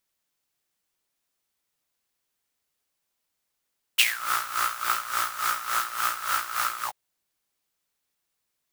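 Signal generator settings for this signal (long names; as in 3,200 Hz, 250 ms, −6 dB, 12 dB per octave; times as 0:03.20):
subtractive patch with tremolo A#2, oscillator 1 triangle, interval −12 semitones, noise −14.5 dB, filter highpass, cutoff 740 Hz, Q 9.9, filter envelope 2 octaves, filter decay 0.21 s, attack 14 ms, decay 0.05 s, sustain −12 dB, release 0.08 s, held 2.86 s, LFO 3.5 Hz, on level 13 dB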